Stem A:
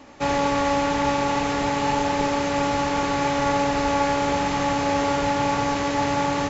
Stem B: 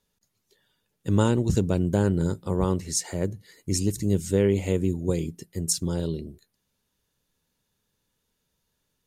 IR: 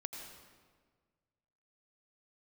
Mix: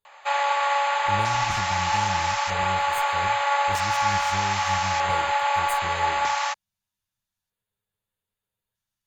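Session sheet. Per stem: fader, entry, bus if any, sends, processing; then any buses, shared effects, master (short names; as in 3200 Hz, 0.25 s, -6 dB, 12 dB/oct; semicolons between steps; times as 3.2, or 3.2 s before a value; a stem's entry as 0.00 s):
+3.0 dB, 0.05 s, no send, HPF 720 Hz 24 dB/oct
-8.0 dB, 0.00 s, no send, minimum comb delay 9.6 ms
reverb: off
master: bell 260 Hz -15 dB 0.5 oct; LFO notch square 0.4 Hz 450–5600 Hz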